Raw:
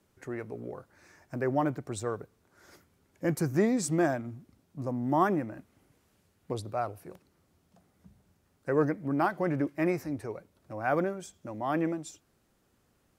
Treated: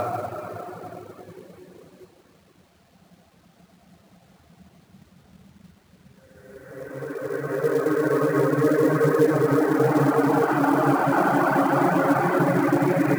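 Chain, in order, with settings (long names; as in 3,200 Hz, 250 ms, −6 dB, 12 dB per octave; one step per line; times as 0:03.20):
high-pass filter 84 Hz 12 dB per octave
extreme stretch with random phases 5.1×, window 1.00 s, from 0:07.01
elliptic low-pass filter 4,400 Hz, stop band 40 dB
in parallel at +0.5 dB: brickwall limiter −23.5 dBFS, peak gain reduction 7.5 dB
on the sum: reverb reduction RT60 1 s
log-companded quantiser 6 bits
level +7 dB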